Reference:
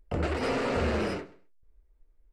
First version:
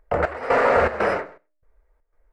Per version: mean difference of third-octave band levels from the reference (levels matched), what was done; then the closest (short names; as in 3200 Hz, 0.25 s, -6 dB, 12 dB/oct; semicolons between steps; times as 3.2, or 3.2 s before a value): 8.0 dB: band shelf 1000 Hz +14.5 dB 2.5 oct; de-hum 304.5 Hz, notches 2; step gate "xx..xxx.x" 120 bpm -12 dB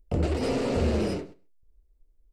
3.0 dB: in parallel at -2 dB: compressor, threshold -43 dBFS, peak gain reduction 17.5 dB; on the sum: gate -45 dBFS, range -9 dB; bell 1500 Hz -12.5 dB 2 oct; gain +4 dB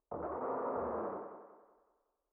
12.0 dB: elliptic low-pass 1100 Hz, stop band 70 dB; differentiator; on a send: thinning echo 0.186 s, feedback 42%, high-pass 180 Hz, level -8.5 dB; on the sum: gain +14.5 dB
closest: second